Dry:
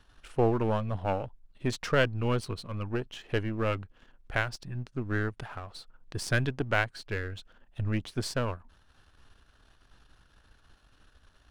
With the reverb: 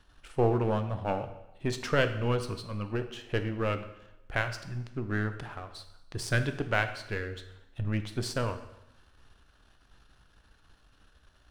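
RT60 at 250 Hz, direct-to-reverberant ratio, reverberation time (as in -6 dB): 1.0 s, 8.0 dB, 0.90 s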